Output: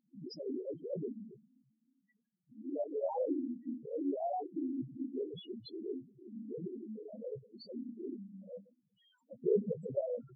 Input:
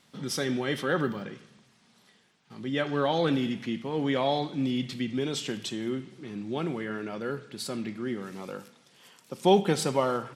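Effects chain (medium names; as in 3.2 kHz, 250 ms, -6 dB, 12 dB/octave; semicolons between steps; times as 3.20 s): loudest bins only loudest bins 1; formant shift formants +4 st; trim +1.5 dB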